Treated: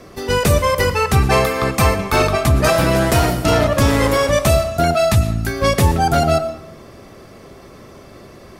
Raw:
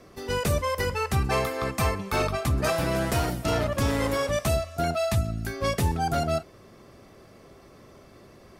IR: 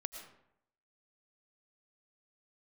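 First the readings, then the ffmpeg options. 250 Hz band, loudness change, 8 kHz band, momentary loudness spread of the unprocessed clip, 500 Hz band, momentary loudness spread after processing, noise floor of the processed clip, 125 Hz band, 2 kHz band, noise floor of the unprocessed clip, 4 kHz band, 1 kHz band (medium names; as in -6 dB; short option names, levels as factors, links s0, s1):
+10.5 dB, +10.5 dB, +10.5 dB, 3 LU, +11.0 dB, 3 LU, -41 dBFS, +10.5 dB, +10.5 dB, -52 dBFS, +10.5 dB, +11.0 dB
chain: -filter_complex "[0:a]asplit=2[s0][s1];[1:a]atrim=start_sample=2205[s2];[s1][s2]afir=irnorm=-1:irlink=0,volume=1.33[s3];[s0][s3]amix=inputs=2:normalize=0,volume=1.68"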